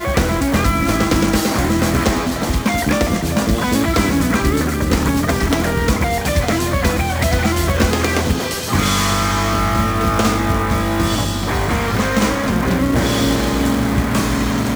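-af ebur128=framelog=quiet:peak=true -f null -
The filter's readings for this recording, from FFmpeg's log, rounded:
Integrated loudness:
  I:         -17.0 LUFS
  Threshold: -27.0 LUFS
Loudness range:
  LRA:         0.6 LU
  Threshold: -37.0 LUFS
  LRA low:   -17.3 LUFS
  LRA high:  -16.8 LUFS
True peak:
  Peak:       -1.6 dBFS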